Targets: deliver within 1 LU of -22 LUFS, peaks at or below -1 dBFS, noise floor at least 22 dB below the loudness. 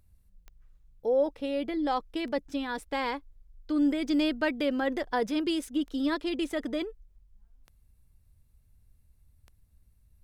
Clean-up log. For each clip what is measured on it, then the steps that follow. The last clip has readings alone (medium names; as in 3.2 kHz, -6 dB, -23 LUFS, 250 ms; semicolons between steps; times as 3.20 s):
clicks found 6; loudness -30.0 LUFS; peak level -16.0 dBFS; loudness target -22.0 LUFS
-> de-click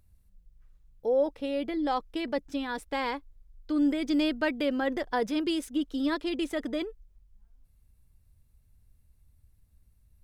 clicks found 0; loudness -30.0 LUFS; peak level -16.0 dBFS; loudness target -22.0 LUFS
-> trim +8 dB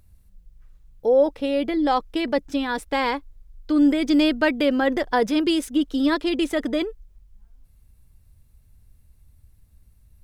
loudness -22.0 LUFS; peak level -8.0 dBFS; noise floor -57 dBFS